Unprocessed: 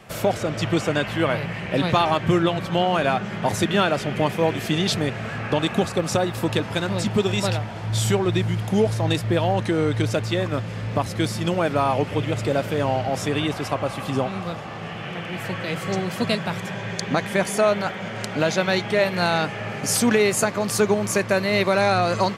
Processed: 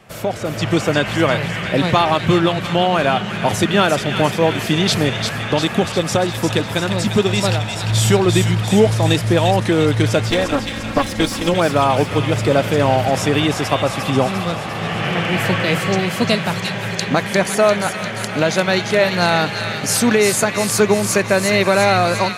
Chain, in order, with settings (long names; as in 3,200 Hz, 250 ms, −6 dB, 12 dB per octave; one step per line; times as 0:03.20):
0:10.30–0:11.54: lower of the sound and its delayed copy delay 3.7 ms
automatic gain control gain up to 14 dB
delay with a high-pass on its return 349 ms, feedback 60%, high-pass 1,700 Hz, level −5 dB
level −1 dB